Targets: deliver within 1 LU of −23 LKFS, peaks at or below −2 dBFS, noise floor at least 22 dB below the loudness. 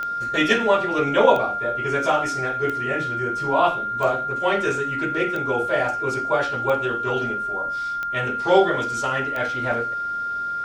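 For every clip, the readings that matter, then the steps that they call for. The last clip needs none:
number of clicks 8; interfering tone 1,400 Hz; level of the tone −24 dBFS; integrated loudness −22.0 LKFS; sample peak −3.0 dBFS; target loudness −23.0 LKFS
→ click removal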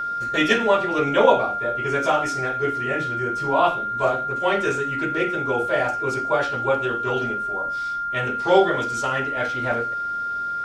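number of clicks 0; interfering tone 1,400 Hz; level of the tone −24 dBFS
→ notch filter 1,400 Hz, Q 30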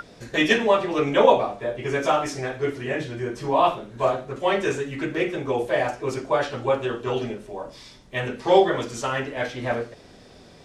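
interfering tone none found; integrated loudness −24.0 LKFS; sample peak −3.5 dBFS; target loudness −23.0 LKFS
→ level +1 dB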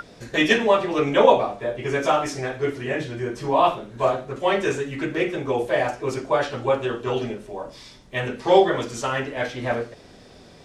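integrated loudness −23.0 LKFS; sample peak −2.5 dBFS; background noise floor −48 dBFS

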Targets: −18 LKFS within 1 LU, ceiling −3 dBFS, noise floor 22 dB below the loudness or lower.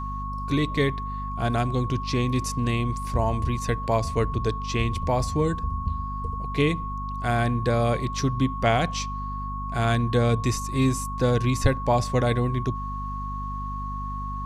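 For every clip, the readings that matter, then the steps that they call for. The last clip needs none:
mains hum 50 Hz; hum harmonics up to 250 Hz; level of the hum −30 dBFS; interfering tone 1,100 Hz; level of the tone −32 dBFS; integrated loudness −26.0 LKFS; sample peak −6.5 dBFS; target loudness −18.0 LKFS
→ hum removal 50 Hz, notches 5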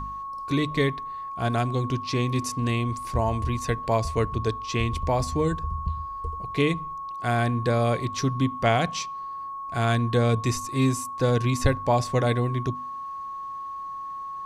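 mains hum none found; interfering tone 1,100 Hz; level of the tone −32 dBFS
→ notch filter 1,100 Hz, Q 30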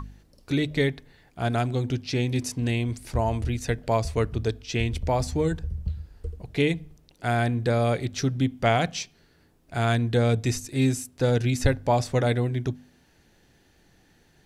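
interfering tone none found; integrated loudness −26.0 LKFS; sample peak −7.0 dBFS; target loudness −18.0 LKFS
→ level +8 dB
brickwall limiter −3 dBFS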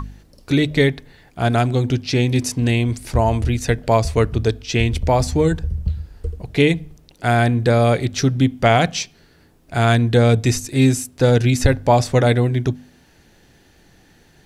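integrated loudness −18.0 LKFS; sample peak −3.0 dBFS; background noise floor −53 dBFS

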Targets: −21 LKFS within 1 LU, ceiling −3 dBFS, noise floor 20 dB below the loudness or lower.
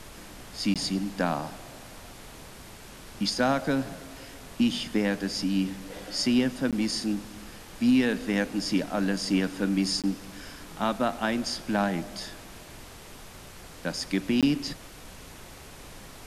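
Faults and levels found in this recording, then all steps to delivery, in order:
number of dropouts 4; longest dropout 17 ms; background noise floor −46 dBFS; target noise floor −48 dBFS; integrated loudness −28.0 LKFS; sample peak −11.5 dBFS; target loudness −21.0 LKFS
→ repair the gap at 0:00.74/0:06.71/0:10.02/0:14.41, 17 ms
noise reduction from a noise print 6 dB
level +7 dB

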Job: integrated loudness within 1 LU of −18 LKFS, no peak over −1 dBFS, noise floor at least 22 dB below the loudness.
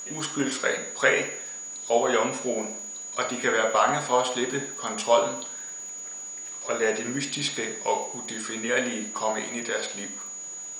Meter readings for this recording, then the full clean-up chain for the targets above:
crackle rate 26 per second; interfering tone 6,800 Hz; level of the tone −35 dBFS; integrated loudness −27.0 LKFS; sample peak −6.0 dBFS; target loudness −18.0 LKFS
→ click removal
notch filter 6,800 Hz, Q 30
level +9 dB
brickwall limiter −1 dBFS

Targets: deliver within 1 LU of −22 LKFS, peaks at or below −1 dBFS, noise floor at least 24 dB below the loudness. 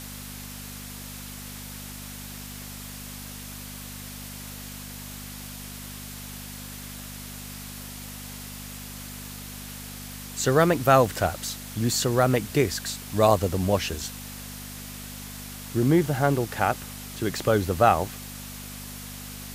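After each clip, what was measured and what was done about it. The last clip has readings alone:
mains hum 50 Hz; hum harmonics up to 250 Hz; level of the hum −39 dBFS; background noise floor −39 dBFS; target noise floor −52 dBFS; integrated loudness −28.0 LKFS; sample peak −5.0 dBFS; target loudness −22.0 LKFS
→ hum removal 50 Hz, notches 5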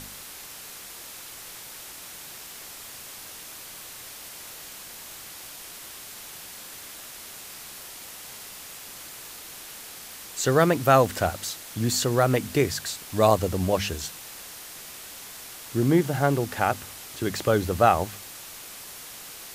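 mains hum none found; background noise floor −42 dBFS; target noise floor −48 dBFS
→ broadband denoise 6 dB, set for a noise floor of −42 dBFS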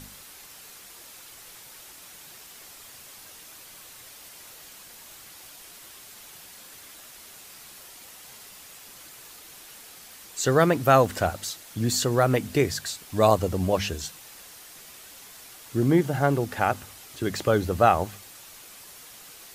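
background noise floor −47 dBFS; target noise floor −48 dBFS
→ broadband denoise 6 dB, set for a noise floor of −47 dBFS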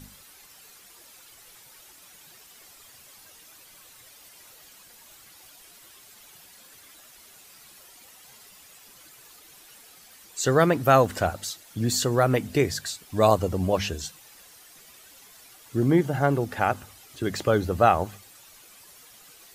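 background noise floor −52 dBFS; integrated loudness −24.0 LKFS; sample peak −5.0 dBFS; target loudness −22.0 LKFS
→ level +2 dB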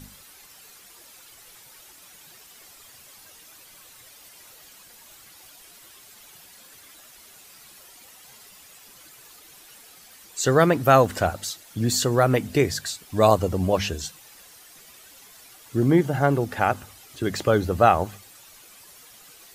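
integrated loudness −22.0 LKFS; sample peak −3.0 dBFS; background noise floor −50 dBFS

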